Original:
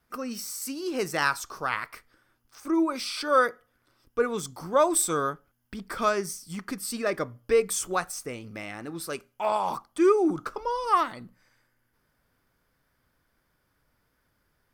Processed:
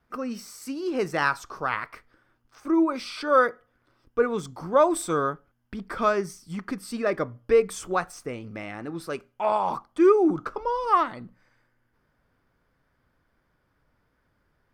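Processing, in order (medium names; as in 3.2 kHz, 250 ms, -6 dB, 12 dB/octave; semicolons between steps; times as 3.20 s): low-pass 2 kHz 6 dB/octave; trim +3 dB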